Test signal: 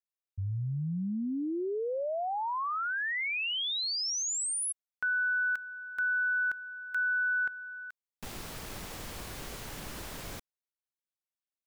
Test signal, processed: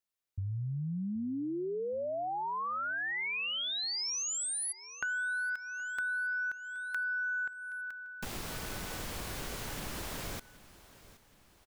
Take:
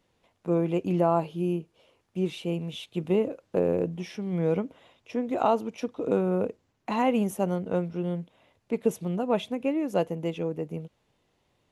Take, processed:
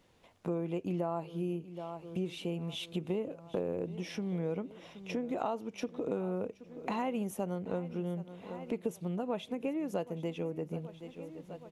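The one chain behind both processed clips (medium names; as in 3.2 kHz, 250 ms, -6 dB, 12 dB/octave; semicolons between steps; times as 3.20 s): on a send: feedback delay 773 ms, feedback 48%, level -20.5 dB; on the sum: compression 3:1, threshold -40 dBFS; trim +4 dB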